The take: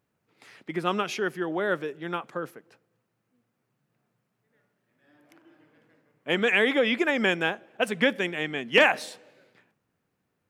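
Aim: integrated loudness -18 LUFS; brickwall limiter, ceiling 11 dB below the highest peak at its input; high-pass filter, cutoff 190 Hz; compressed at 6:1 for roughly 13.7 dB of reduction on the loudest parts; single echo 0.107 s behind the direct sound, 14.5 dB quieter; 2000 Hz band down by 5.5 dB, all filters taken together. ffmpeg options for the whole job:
-af "highpass=190,equalizer=f=2k:t=o:g=-7,acompressor=threshold=-31dB:ratio=6,alimiter=level_in=6dB:limit=-24dB:level=0:latency=1,volume=-6dB,aecho=1:1:107:0.188,volume=22dB"

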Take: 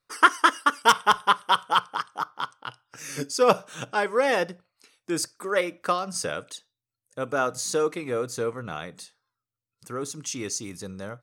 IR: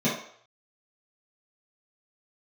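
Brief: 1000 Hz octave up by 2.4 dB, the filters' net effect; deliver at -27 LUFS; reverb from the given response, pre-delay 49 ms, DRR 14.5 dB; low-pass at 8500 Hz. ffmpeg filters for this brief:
-filter_complex "[0:a]lowpass=8.5k,equalizer=f=1k:t=o:g=3,asplit=2[a][b];[1:a]atrim=start_sample=2205,adelay=49[c];[b][c]afir=irnorm=-1:irlink=0,volume=-27.5dB[d];[a][d]amix=inputs=2:normalize=0,volume=-3dB"

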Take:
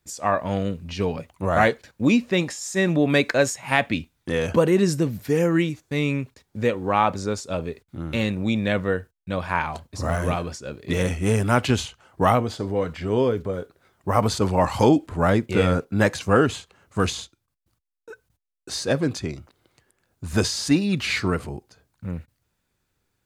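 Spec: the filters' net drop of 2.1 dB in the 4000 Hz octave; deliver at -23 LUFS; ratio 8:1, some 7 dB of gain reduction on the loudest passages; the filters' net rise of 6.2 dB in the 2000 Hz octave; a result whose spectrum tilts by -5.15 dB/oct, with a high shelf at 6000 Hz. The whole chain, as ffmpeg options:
-af "equalizer=f=2k:t=o:g=9,equalizer=f=4k:t=o:g=-7.5,highshelf=f=6k:g=4.5,acompressor=threshold=-18dB:ratio=8,volume=2.5dB"

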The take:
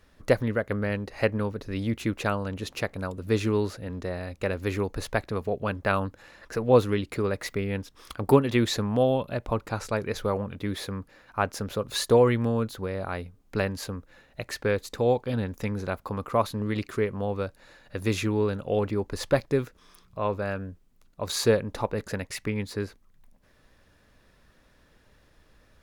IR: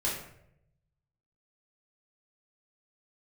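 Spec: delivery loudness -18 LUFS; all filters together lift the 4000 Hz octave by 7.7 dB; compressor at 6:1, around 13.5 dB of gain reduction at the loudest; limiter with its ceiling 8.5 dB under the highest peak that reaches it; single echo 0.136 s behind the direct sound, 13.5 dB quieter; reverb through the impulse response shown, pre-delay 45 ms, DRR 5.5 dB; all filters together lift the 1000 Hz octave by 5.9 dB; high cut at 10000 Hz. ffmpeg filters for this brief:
-filter_complex "[0:a]lowpass=10k,equalizer=f=1k:t=o:g=7,equalizer=f=4k:t=o:g=8.5,acompressor=threshold=-27dB:ratio=6,alimiter=limit=-21dB:level=0:latency=1,aecho=1:1:136:0.211,asplit=2[a][b];[1:a]atrim=start_sample=2205,adelay=45[c];[b][c]afir=irnorm=-1:irlink=0,volume=-12dB[d];[a][d]amix=inputs=2:normalize=0,volume=14.5dB"

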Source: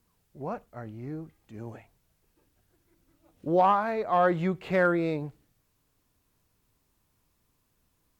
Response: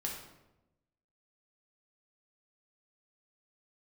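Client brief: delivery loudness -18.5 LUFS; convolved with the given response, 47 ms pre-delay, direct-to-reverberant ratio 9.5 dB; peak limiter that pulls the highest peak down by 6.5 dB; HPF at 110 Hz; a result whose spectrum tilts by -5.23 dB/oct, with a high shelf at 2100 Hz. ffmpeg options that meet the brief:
-filter_complex "[0:a]highpass=110,highshelf=f=2.1k:g=7,alimiter=limit=-17.5dB:level=0:latency=1,asplit=2[a][b];[1:a]atrim=start_sample=2205,adelay=47[c];[b][c]afir=irnorm=-1:irlink=0,volume=-11dB[d];[a][d]amix=inputs=2:normalize=0,volume=11dB"

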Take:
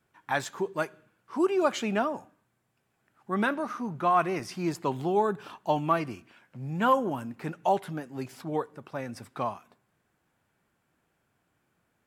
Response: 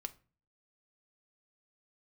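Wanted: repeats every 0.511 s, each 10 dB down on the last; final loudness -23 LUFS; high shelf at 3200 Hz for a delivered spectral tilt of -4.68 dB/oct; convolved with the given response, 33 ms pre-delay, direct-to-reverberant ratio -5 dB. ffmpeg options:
-filter_complex "[0:a]highshelf=f=3.2k:g=8,aecho=1:1:511|1022|1533|2044:0.316|0.101|0.0324|0.0104,asplit=2[a][b];[1:a]atrim=start_sample=2205,adelay=33[c];[b][c]afir=irnorm=-1:irlink=0,volume=7.5dB[d];[a][d]amix=inputs=2:normalize=0"

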